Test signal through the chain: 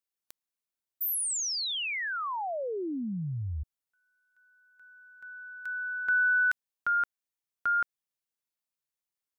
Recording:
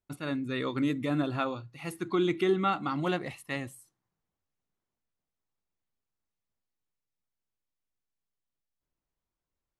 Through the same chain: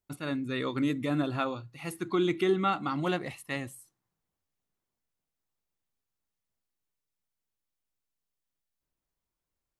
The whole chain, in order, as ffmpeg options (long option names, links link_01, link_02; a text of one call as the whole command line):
ffmpeg -i in.wav -af "highshelf=frequency=6700:gain=3.5" out.wav